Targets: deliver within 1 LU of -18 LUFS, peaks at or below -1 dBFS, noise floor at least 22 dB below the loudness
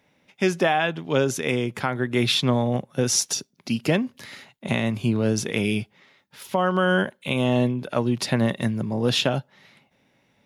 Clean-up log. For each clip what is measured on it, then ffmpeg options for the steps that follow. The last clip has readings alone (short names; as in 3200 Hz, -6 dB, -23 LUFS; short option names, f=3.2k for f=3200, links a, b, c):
loudness -23.5 LUFS; peak -8.5 dBFS; loudness target -18.0 LUFS
-> -af "volume=5.5dB"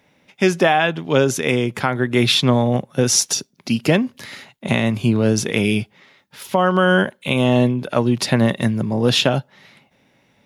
loudness -18.0 LUFS; peak -3.0 dBFS; noise floor -60 dBFS